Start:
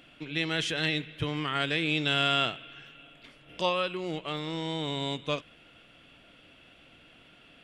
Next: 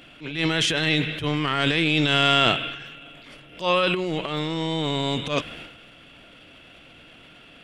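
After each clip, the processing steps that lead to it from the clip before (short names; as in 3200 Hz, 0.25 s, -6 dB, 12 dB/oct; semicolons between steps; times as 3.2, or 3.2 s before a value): transient shaper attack -11 dB, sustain +10 dB; gain +7.5 dB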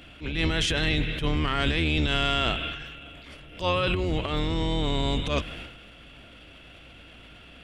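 octaver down 2 oct, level +4 dB; compressor 5:1, threshold -20 dBFS, peak gain reduction 6.5 dB; gain -1 dB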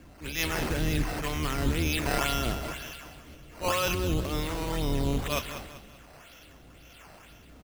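harmonic tremolo 1.2 Hz, depth 70%, crossover 540 Hz; decimation with a swept rate 9×, swing 100% 2 Hz; on a send: feedback echo 0.194 s, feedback 39%, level -11 dB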